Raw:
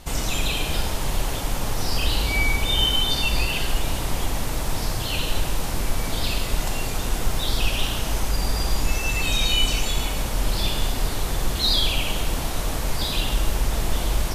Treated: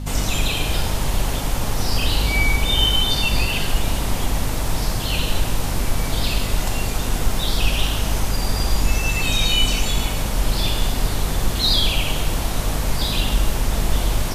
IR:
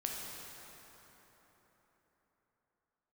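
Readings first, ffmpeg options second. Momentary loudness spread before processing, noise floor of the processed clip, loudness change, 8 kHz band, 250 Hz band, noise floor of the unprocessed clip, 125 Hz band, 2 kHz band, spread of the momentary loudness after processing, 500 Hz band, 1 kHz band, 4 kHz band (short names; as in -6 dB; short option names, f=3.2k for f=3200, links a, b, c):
7 LU, -24 dBFS, +3.0 dB, +2.5 dB, +4.0 dB, -27 dBFS, +4.5 dB, +2.5 dB, 6 LU, +2.5 dB, +2.5 dB, +2.5 dB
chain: -af "aeval=exprs='val(0)+0.0355*(sin(2*PI*50*n/s)+sin(2*PI*2*50*n/s)/2+sin(2*PI*3*50*n/s)/3+sin(2*PI*4*50*n/s)/4+sin(2*PI*5*50*n/s)/5)':c=same,apsyclip=9dB,volume=-6.5dB"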